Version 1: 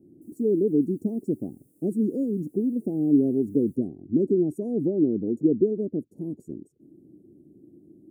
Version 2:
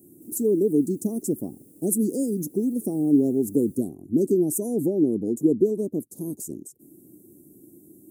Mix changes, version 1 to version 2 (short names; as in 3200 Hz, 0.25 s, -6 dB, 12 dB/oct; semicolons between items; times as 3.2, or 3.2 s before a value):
speech: remove running mean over 35 samples; background +11.5 dB